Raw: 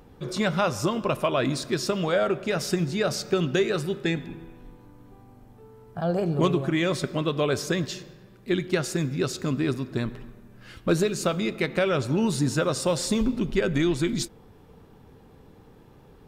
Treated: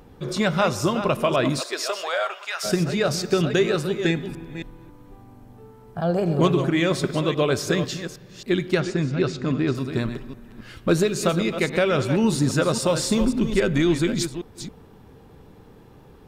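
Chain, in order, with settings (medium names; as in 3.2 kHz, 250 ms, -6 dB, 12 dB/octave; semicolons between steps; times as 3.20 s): chunks repeated in reverse 272 ms, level -9.5 dB; 1.59–2.63 s: high-pass 400 Hz -> 1 kHz 24 dB/octave; 8.80–9.75 s: distance through air 130 m; trim +3 dB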